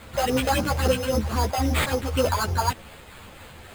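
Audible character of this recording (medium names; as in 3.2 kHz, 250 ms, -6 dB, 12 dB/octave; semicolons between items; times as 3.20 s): a quantiser's noise floor 8-bit, dither triangular; phasing stages 4, 3.7 Hz, lowest notch 230–2700 Hz; aliases and images of a low sample rate 5.7 kHz, jitter 0%; a shimmering, thickened sound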